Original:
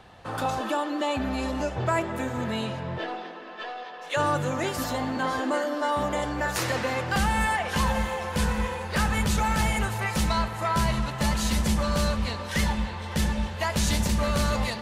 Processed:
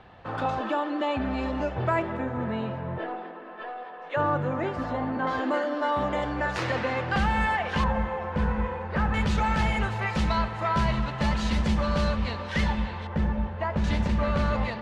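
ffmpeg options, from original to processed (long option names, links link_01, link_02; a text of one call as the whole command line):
ffmpeg -i in.wav -af "asetnsamples=nb_out_samples=441:pad=0,asendcmd='2.17 lowpass f 1700;5.27 lowpass f 3300;7.84 lowpass f 1600;9.14 lowpass f 3600;13.07 lowpass f 1400;13.84 lowpass f 2400',lowpass=2900" out.wav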